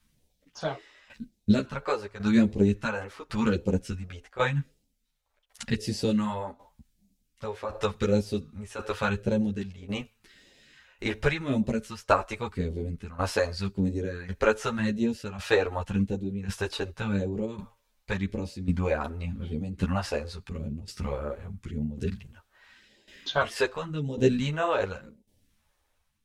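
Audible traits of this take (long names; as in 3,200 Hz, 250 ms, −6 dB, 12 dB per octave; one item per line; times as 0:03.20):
phaser sweep stages 2, 0.88 Hz, lowest notch 160–1,300 Hz
tremolo saw down 0.91 Hz, depth 80%
a shimmering, thickened sound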